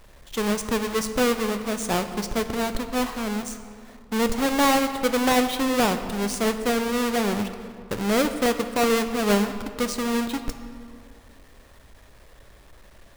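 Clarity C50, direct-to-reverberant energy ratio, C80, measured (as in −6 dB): 9.5 dB, 8.0 dB, 10.5 dB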